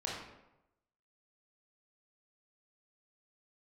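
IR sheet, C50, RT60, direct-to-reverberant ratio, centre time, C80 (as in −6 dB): 1.0 dB, 0.95 s, −4.5 dB, 60 ms, 4.0 dB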